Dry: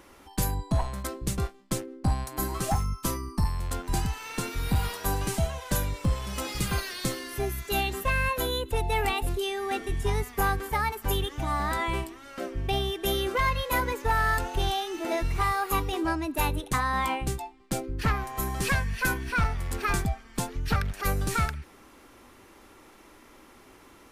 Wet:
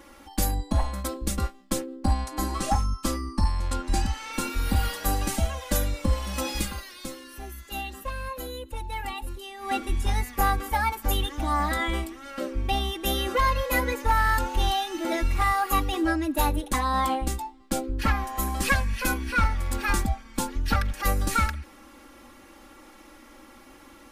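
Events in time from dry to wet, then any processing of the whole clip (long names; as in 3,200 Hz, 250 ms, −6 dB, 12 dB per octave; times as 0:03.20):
0:02.13–0:04.33: low-pass filter 9,100 Hz
0:06.60–0:09.71: duck −9.5 dB, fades 0.13 s
whole clip: comb filter 3.6 ms, depth 93%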